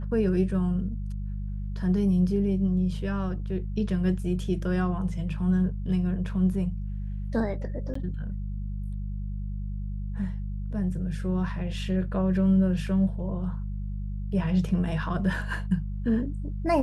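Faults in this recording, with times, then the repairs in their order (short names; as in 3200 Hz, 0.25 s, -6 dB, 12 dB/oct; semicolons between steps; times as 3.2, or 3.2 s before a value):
hum 50 Hz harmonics 4 -32 dBFS
7.94–7.95 gap 14 ms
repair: de-hum 50 Hz, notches 4; interpolate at 7.94, 14 ms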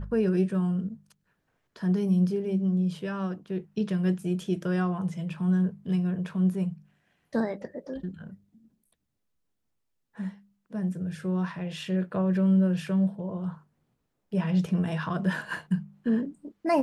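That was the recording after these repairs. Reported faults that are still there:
none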